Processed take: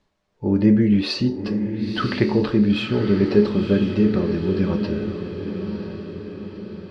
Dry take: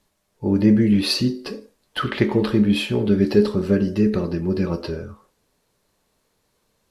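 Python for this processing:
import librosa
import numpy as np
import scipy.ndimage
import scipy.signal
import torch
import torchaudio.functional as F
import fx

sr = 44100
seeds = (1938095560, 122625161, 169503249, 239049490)

p1 = fx.air_absorb(x, sr, metres=130.0)
y = p1 + fx.echo_diffused(p1, sr, ms=984, feedback_pct=53, wet_db=-8.0, dry=0)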